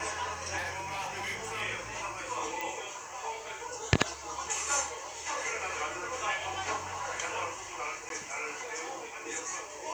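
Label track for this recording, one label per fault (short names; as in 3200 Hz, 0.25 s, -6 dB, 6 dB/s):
0.570000	1.620000	clipped -32 dBFS
2.610000	2.610000	pop
8.090000	8.100000	gap 12 ms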